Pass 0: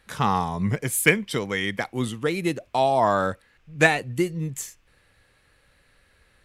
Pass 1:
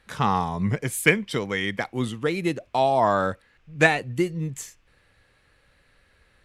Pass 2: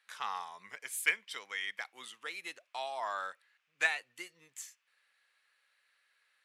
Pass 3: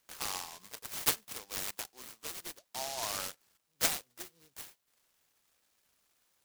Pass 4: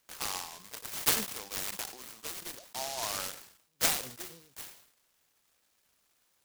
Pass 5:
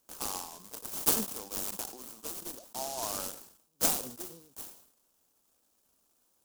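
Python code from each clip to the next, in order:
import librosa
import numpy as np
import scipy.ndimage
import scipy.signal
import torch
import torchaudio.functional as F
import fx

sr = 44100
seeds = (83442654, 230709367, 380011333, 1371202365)

y1 = fx.high_shelf(x, sr, hz=9500.0, db=-9.5)
y2 = scipy.signal.sosfilt(scipy.signal.butter(2, 1300.0, 'highpass', fs=sr, output='sos'), y1)
y2 = y2 * 10.0 ** (-8.5 / 20.0)
y3 = fx.noise_mod_delay(y2, sr, seeds[0], noise_hz=4800.0, depth_ms=0.19)
y4 = fx.sustainer(y3, sr, db_per_s=90.0)
y4 = y4 * 10.0 ** (1.5 / 20.0)
y5 = fx.graphic_eq(y4, sr, hz=(125, 250, 2000, 4000), db=(-5, 5, -12, -5))
y5 = y5 * 10.0 ** (2.0 / 20.0)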